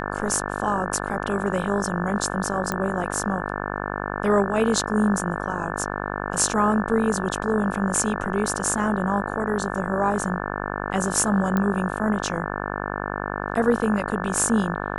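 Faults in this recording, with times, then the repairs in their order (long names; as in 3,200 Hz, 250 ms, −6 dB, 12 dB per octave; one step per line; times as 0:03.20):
mains buzz 50 Hz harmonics 35 −29 dBFS
0:02.72: click −11 dBFS
0:11.57: click −11 dBFS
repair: click removal
hum removal 50 Hz, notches 35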